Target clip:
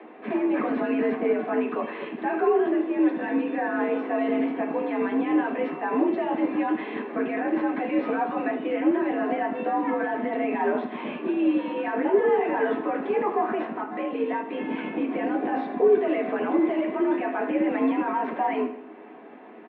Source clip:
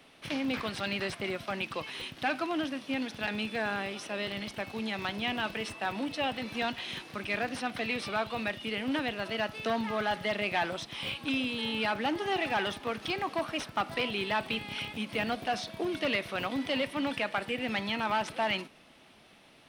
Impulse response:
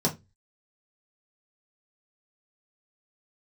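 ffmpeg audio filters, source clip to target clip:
-filter_complex "[0:a]asettb=1/sr,asplit=3[link_01][link_02][link_03];[link_01]atrim=end=13.774[link_04];[link_02]atrim=start=13.77:end=14.53,asetpts=PTS-STARTPTS,afade=type=in:duration=0.004:curve=qsin,afade=type=out:start_time=0.756:duration=0.004:curve=qsin,acompressor=threshold=-37dB:ratio=10[link_05];[link_03]atrim=start=14.526[link_06];[link_04][link_05]acrossfade=duration=0.004:curve1=hsin:curve2=qsin[link_07];[link_07][link_06]acrossfade=duration=0.004:curve1=qsin:curve2=hsin,alimiter=level_in=5dB:limit=-24dB:level=0:latency=1:release=21,volume=-5dB,acompressor=mode=upward:threshold=-52dB:ratio=2.5,highpass=frequency=180:width_type=q:width=0.5412,highpass=frequency=180:width_type=q:width=1.307,lowpass=frequency=2400:width_type=q:width=0.5176,lowpass=frequency=2400:width_type=q:width=0.7071,lowpass=frequency=2400:width_type=q:width=1.932,afreqshift=67,aecho=1:1:78|156|234|312|390:0.237|0.114|0.0546|0.0262|0.0126[link_08];[1:a]atrim=start_sample=2205[link_09];[link_08][link_09]afir=irnorm=-1:irlink=0"

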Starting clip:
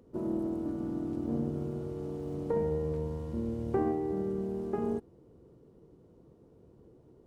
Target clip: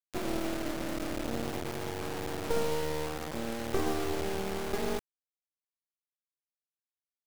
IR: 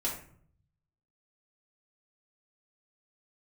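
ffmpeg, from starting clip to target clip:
-filter_complex "[0:a]acrossover=split=300[link_01][link_02];[link_01]acompressor=threshold=-47dB:ratio=20[link_03];[link_03][link_02]amix=inputs=2:normalize=0,acrusher=bits=4:dc=4:mix=0:aa=0.000001,volume=6.5dB"

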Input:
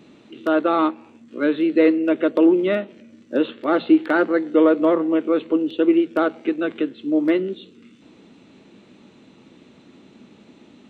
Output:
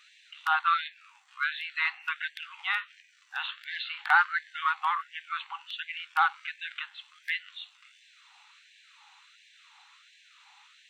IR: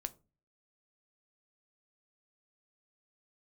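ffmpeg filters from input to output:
-filter_complex "[0:a]asplit=2[link_01][link_02];[1:a]atrim=start_sample=2205[link_03];[link_02][link_03]afir=irnorm=-1:irlink=0,volume=-9.5dB[link_04];[link_01][link_04]amix=inputs=2:normalize=0,afftfilt=real='re*gte(b*sr/1024,720*pow(1600/720,0.5+0.5*sin(2*PI*1.4*pts/sr)))':imag='im*gte(b*sr/1024,720*pow(1600/720,0.5+0.5*sin(2*PI*1.4*pts/sr)))':win_size=1024:overlap=0.75"

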